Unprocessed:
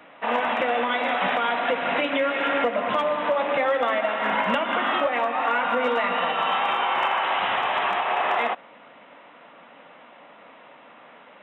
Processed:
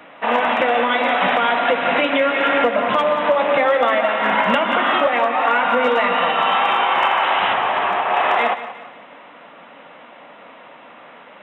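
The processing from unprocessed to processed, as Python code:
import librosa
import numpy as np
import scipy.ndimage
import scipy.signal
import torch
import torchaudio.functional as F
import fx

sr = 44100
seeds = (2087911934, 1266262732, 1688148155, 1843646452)

p1 = fx.high_shelf(x, sr, hz=2800.0, db=-9.5, at=(7.53, 8.14))
p2 = p1 + fx.echo_feedback(p1, sr, ms=179, feedback_pct=40, wet_db=-13, dry=0)
y = p2 * librosa.db_to_amplitude(6.0)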